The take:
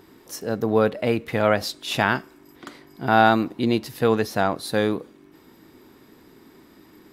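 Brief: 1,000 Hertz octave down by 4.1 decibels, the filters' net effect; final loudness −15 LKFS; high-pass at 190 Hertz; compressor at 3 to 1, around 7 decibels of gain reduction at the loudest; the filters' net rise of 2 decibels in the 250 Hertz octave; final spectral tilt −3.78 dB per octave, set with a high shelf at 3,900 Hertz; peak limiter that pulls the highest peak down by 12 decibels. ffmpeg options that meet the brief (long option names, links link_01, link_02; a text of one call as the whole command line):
ffmpeg -i in.wav -af "highpass=190,equalizer=frequency=250:width_type=o:gain=4.5,equalizer=frequency=1000:width_type=o:gain=-7,highshelf=frequency=3900:gain=6,acompressor=threshold=-23dB:ratio=3,volume=18dB,alimiter=limit=-4dB:level=0:latency=1" out.wav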